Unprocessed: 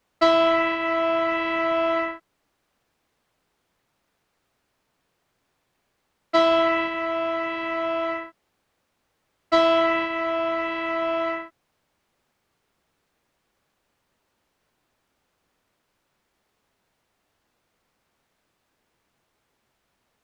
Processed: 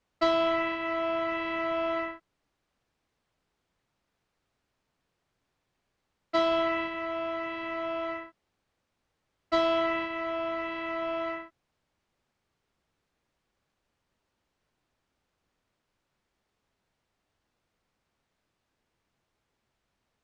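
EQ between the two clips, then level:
high-frequency loss of the air 65 metres
low-shelf EQ 160 Hz +6.5 dB
high-shelf EQ 4,900 Hz +6.5 dB
−7.5 dB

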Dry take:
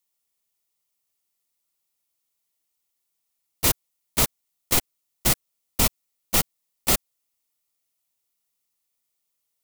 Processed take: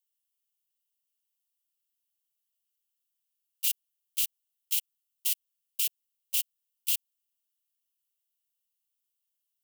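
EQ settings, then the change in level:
four-pole ladder high-pass 2,700 Hz, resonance 75%
first difference
+2.0 dB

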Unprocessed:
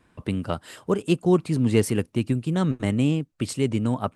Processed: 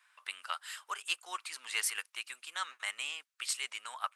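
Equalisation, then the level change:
high-pass filter 1,200 Hz 24 dB per octave
0.0 dB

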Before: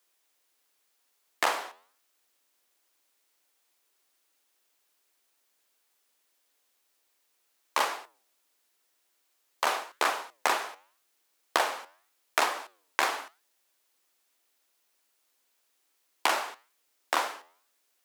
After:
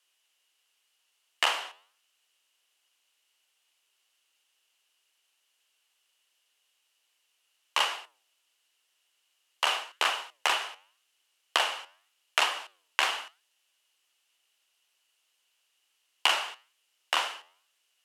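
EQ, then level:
high-pass filter 850 Hz 6 dB per octave
low-pass filter 11,000 Hz 12 dB per octave
parametric band 2,900 Hz +13.5 dB 0.27 octaves
0.0 dB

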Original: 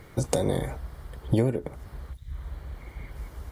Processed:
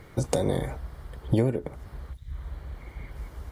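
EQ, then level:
high-shelf EQ 6,700 Hz −4 dB
0.0 dB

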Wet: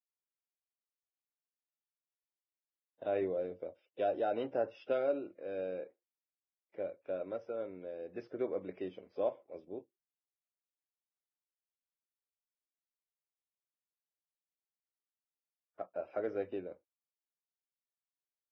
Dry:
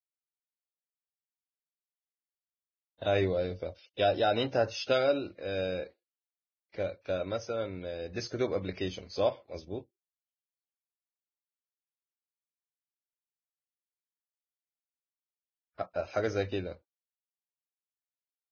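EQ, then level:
Savitzky-Golay smoothing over 25 samples
high-pass filter 370 Hz 12 dB per octave
tilt shelving filter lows +8.5 dB, about 710 Hz
−6.5 dB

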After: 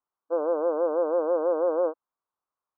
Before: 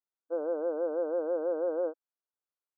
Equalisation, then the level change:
low-pass with resonance 1,100 Hz, resonance Q 3.8
+4.0 dB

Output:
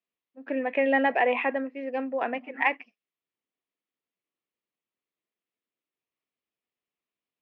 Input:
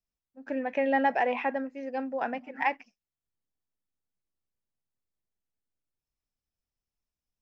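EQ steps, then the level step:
loudspeaker in its box 330–3,200 Hz, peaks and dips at 580 Hz −4 dB, 840 Hz −8 dB, 1,500 Hz −8 dB
+7.5 dB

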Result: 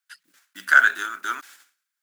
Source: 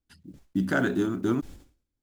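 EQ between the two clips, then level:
high-pass with resonance 1,500 Hz, resonance Q 3.5
high-shelf EQ 4,300 Hz +6.5 dB
+4.5 dB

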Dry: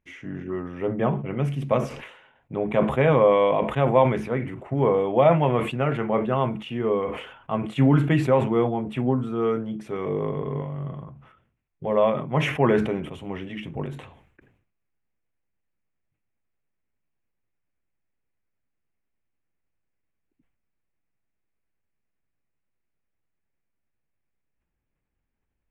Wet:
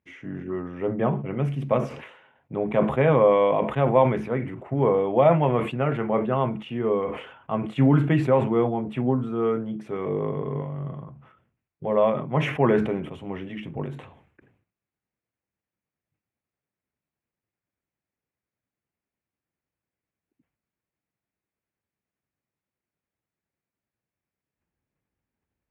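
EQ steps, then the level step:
high-pass filter 78 Hz
high-shelf EQ 3,500 Hz −8.5 dB
0.0 dB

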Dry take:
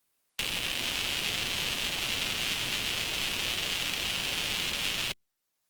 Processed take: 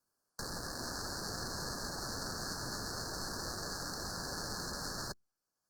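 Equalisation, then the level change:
Chebyshev band-stop filter 1,700–4,300 Hz, order 5
high-shelf EQ 9,300 Hz −12 dB
−1.5 dB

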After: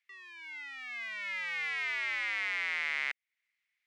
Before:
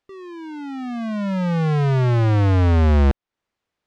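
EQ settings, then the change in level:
high-pass with resonance 2,100 Hz, resonance Q 7
−7.0 dB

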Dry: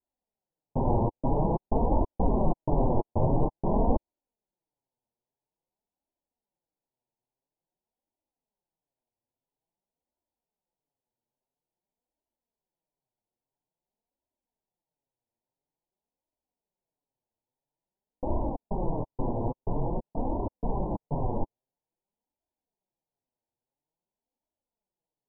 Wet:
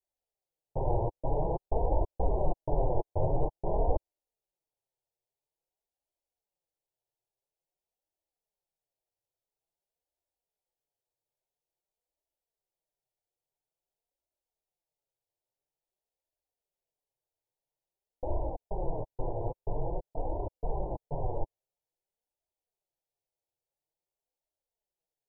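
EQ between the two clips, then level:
phaser with its sweep stopped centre 560 Hz, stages 4
−1.5 dB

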